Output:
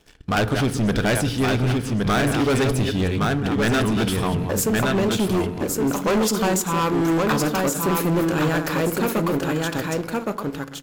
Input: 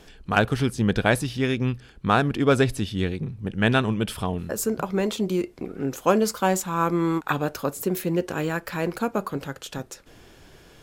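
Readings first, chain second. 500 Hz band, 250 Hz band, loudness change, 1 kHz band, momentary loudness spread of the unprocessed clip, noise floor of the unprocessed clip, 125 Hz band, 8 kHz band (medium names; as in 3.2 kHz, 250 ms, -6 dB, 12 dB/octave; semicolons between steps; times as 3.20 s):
+2.5 dB, +4.5 dB, +3.0 dB, +2.0 dB, 10 LU, -51 dBFS, +4.0 dB, +7.0 dB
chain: chunks repeated in reverse 162 ms, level -12 dB; waveshaping leveller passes 3; delay 1116 ms -4 dB; FDN reverb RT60 0.84 s, low-frequency decay 1.4×, high-frequency decay 0.4×, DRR 13.5 dB; hard clipper -11 dBFS, distortion -12 dB; trim -5.5 dB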